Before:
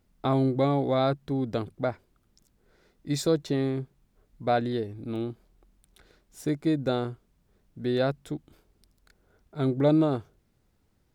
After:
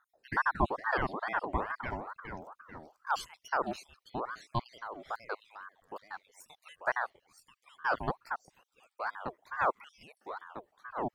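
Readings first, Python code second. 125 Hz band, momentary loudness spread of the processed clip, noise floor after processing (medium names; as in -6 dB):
-14.5 dB, 17 LU, -81 dBFS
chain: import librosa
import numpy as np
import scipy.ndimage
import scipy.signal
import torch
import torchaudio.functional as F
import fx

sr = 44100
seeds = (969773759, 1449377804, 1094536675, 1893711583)

y = fx.spec_dropout(x, sr, seeds[0], share_pct=74)
y = fx.echo_pitch(y, sr, ms=189, semitones=-2, count=3, db_per_echo=-6.0)
y = fx.ring_lfo(y, sr, carrier_hz=920.0, swing_pct=50, hz=2.3)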